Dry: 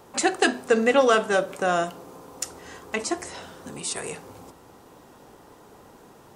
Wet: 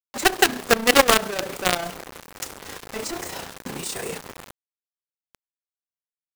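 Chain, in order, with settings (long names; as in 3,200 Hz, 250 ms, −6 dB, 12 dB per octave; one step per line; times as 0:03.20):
high-shelf EQ 9,600 Hz −6 dB
log-companded quantiser 2 bits
amplitude modulation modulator 30 Hz, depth 40%
level −1 dB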